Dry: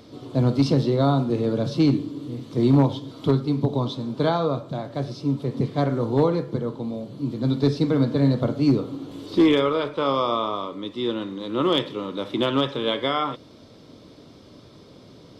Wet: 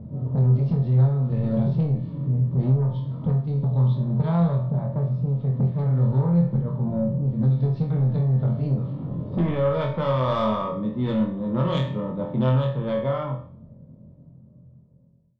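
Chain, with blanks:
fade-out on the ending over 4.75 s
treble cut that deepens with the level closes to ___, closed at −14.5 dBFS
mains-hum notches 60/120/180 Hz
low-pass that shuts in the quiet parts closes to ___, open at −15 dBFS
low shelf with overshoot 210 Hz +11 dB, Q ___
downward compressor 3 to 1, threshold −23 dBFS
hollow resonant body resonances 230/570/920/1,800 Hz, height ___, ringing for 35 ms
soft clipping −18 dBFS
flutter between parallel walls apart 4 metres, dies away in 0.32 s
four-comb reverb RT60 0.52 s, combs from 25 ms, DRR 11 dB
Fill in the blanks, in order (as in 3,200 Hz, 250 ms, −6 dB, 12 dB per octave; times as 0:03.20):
1,600 Hz, 500 Hz, 3, 8 dB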